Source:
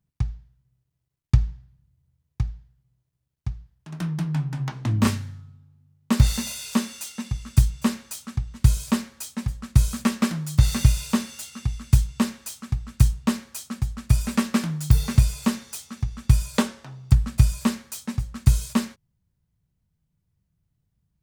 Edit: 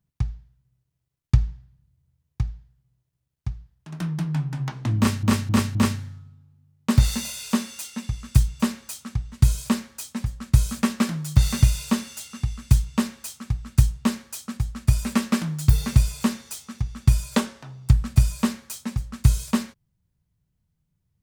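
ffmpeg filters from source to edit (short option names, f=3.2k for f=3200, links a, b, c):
-filter_complex "[0:a]asplit=4[a][b][c][d];[a]atrim=end=5.232[e];[b]atrim=start=4.968:end=5.232[f];[c]atrim=start=4.968:end=5.232[g];[d]atrim=start=4.968[h];[e][f]acrossfade=d=0.004:c1=hsin:c2=hsin[i];[i][g]acrossfade=d=0.004:c1=hsin:c2=hsin[j];[j][h]acrossfade=d=0.004:c1=hsin:c2=hsin"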